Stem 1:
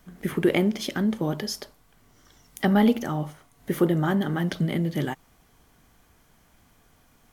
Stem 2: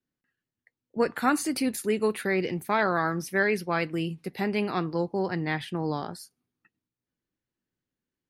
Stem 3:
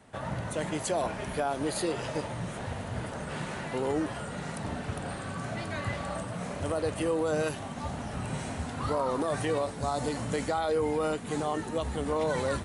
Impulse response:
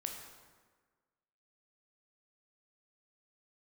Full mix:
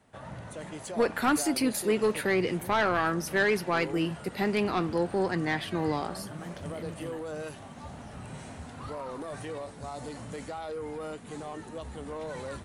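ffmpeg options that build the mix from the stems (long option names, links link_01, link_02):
-filter_complex "[0:a]adelay=2050,volume=-16dB[link_01];[1:a]highpass=170,asoftclip=type=tanh:threshold=-19dB,volume=2dB,asplit=2[link_02][link_03];[2:a]asoftclip=type=tanh:threshold=-23.5dB,volume=-7dB[link_04];[link_03]apad=whole_len=413526[link_05];[link_01][link_05]sidechaincompress=threshold=-44dB:ratio=8:attack=16:release=121[link_06];[link_06][link_02][link_04]amix=inputs=3:normalize=0"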